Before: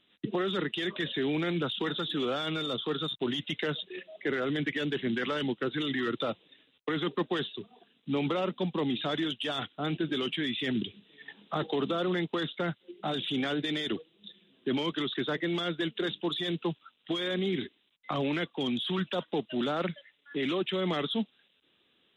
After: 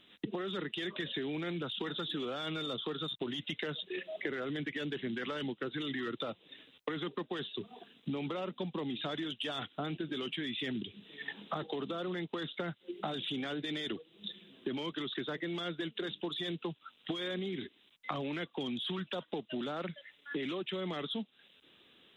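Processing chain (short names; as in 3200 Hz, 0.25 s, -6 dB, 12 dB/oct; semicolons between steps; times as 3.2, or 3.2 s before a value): compressor 12:1, threshold -41 dBFS, peak gain reduction 16.5 dB; gain +6.5 dB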